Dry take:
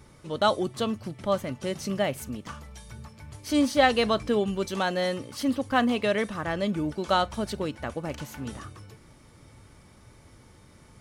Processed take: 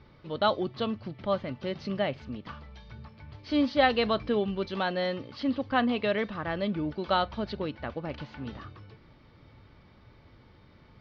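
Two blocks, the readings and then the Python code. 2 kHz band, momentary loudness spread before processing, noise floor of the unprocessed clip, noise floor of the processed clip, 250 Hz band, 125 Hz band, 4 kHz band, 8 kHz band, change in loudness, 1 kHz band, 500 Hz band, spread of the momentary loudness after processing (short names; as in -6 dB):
-2.5 dB, 18 LU, -54 dBFS, -57 dBFS, -2.5 dB, -2.5 dB, -3.0 dB, under -20 dB, -2.5 dB, -2.5 dB, -2.5 dB, 19 LU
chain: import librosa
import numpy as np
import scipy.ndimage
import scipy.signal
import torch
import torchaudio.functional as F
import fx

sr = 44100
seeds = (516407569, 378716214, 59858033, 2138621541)

y = scipy.signal.sosfilt(scipy.signal.butter(8, 4700.0, 'lowpass', fs=sr, output='sos'), x)
y = F.gain(torch.from_numpy(y), -2.5).numpy()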